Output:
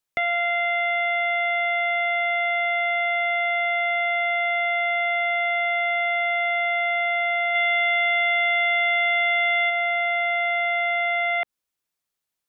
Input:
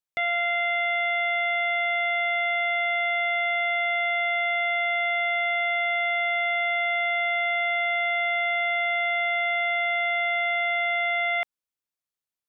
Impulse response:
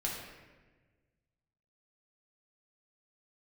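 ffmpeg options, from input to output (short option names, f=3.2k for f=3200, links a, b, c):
-filter_complex "[0:a]acrossover=split=3000[a][b];[b]acompressor=threshold=-52dB:ratio=4:attack=1:release=60[c];[a][c]amix=inputs=2:normalize=0,asplit=3[d][e][f];[d]afade=t=out:st=7.54:d=0.02[g];[e]highshelf=f=2.2k:g=9.5,afade=t=in:st=7.54:d=0.02,afade=t=out:st=9.69:d=0.02[h];[f]afade=t=in:st=9.69:d=0.02[i];[g][h][i]amix=inputs=3:normalize=0,acrossover=split=500|3000[j][k][l];[k]acompressor=threshold=-33dB:ratio=2.5[m];[j][m][l]amix=inputs=3:normalize=0,volume=7dB"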